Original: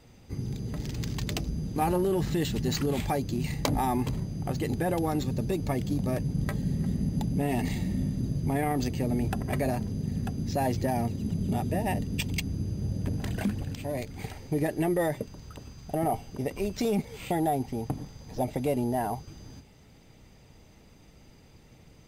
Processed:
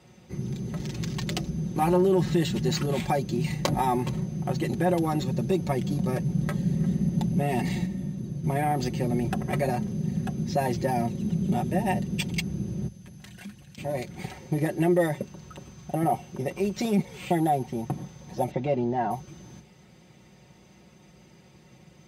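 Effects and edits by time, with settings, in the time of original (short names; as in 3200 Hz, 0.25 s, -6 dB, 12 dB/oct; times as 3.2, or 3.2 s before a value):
7.86–8.44 gain -5.5 dB
12.88–13.78 passive tone stack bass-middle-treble 5-5-5
18.51–19.11 Bessel low-pass 3700 Hz, order 8
whole clip: HPF 66 Hz 24 dB/oct; high shelf 12000 Hz -10 dB; comb 5.5 ms, depth 69%; gain +1 dB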